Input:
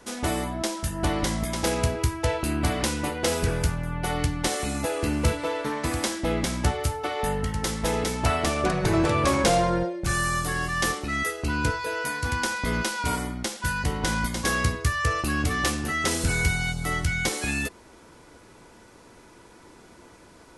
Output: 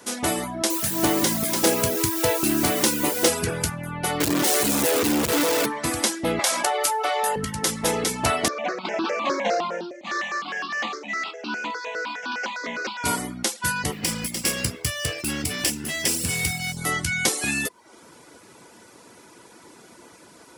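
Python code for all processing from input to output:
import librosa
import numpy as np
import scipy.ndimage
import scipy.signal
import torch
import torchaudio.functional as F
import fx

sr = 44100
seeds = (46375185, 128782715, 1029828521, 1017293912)

y = fx.chain(x, sr, fx.highpass(hz=79.0, slope=12),
    fx.peak_eq(hz=350.0, db=5.5, octaves=0.96),
    fx.quant_dither(seeds[0], bits=6, dither='triangular'), at=(0.7, 3.28))
y = fx.chain(y, sr, fx.clip_1bit(),
    fx.peak_eq(hz=340.0, db=6.5, octaves=1.3), at=(4.2, 5.66))
y = fx.chain(y, sr, fx.highpass_res(hz=640.0, q=1.5),
    fx.env_flatten(amount_pct=70), at=(6.39, 7.36))
y = fx.chain(y, sr, fx.cvsd(bps=32000),
    fx.steep_highpass(hz=200.0, slope=72),
    fx.phaser_held(hz=9.8, low_hz=770.0, high_hz=2000.0), at=(8.48, 13.04))
y = fx.chain(y, sr, fx.lower_of_two(delay_ms=0.39),
    fx.peak_eq(hz=730.0, db=-5.0, octaves=2.9), at=(13.92, 16.77))
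y = scipy.signal.sosfilt(scipy.signal.butter(2, 140.0, 'highpass', fs=sr, output='sos'), y)
y = fx.dereverb_blind(y, sr, rt60_s=0.53)
y = fx.high_shelf(y, sr, hz=5500.0, db=7.5)
y = y * librosa.db_to_amplitude(3.0)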